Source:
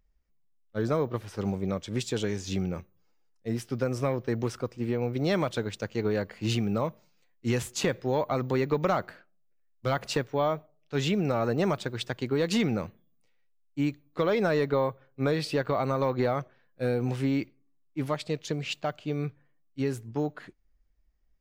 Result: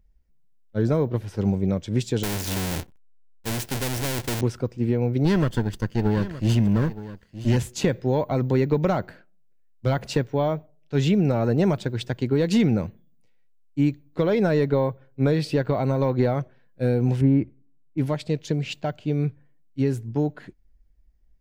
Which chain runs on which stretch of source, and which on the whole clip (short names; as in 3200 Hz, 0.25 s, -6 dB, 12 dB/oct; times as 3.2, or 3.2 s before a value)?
2.23–4.41 half-waves squared off + sample leveller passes 2 + spectral compressor 2:1
5.25–7.57 minimum comb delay 0.64 ms + echo 0.919 s -14.5 dB
17.21–17.98 LPF 1500 Hz + bell 63 Hz +8 dB 1.8 oct
whole clip: low shelf 370 Hz +10 dB; notch 1200 Hz, Q 6.9